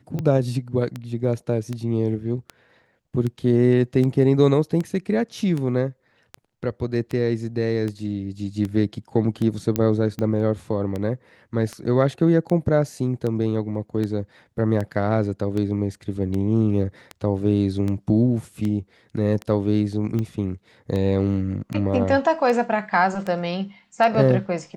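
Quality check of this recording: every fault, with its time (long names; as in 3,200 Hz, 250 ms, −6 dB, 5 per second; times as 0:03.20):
scratch tick 78 rpm −16 dBFS
0:09.76: click −8 dBFS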